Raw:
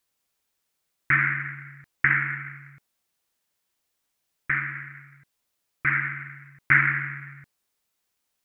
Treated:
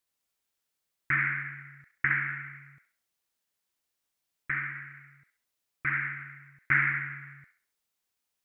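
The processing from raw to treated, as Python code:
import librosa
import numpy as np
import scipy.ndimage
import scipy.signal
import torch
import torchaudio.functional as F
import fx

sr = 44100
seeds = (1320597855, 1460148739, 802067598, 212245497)

y = fx.echo_wet_highpass(x, sr, ms=68, feedback_pct=33, hz=1400.0, wet_db=-5.0)
y = y * librosa.db_to_amplitude(-6.5)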